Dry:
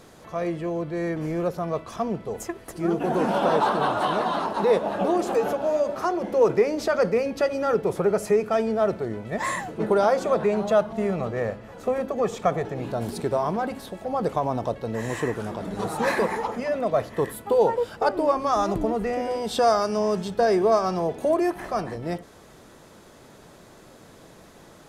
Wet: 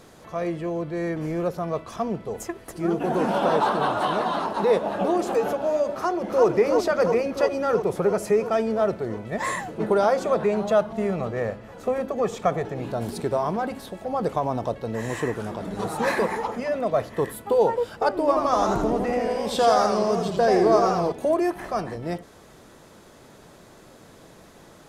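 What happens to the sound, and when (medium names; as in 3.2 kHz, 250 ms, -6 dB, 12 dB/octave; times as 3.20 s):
5.94–6.46 s: echo throw 340 ms, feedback 75%, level -4 dB
18.19–21.12 s: modulated delay 83 ms, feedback 57%, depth 158 cents, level -4.5 dB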